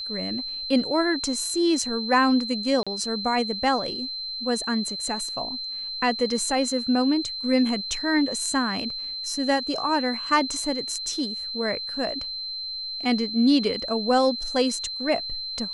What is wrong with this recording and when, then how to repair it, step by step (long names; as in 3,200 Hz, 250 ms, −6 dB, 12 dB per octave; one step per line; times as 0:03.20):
whistle 4,100 Hz −30 dBFS
0:02.83–0:02.87: drop-out 36 ms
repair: notch filter 4,100 Hz, Q 30
repair the gap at 0:02.83, 36 ms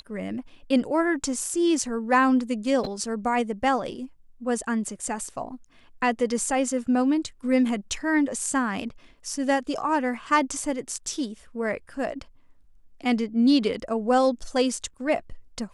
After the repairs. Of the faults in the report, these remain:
none of them is left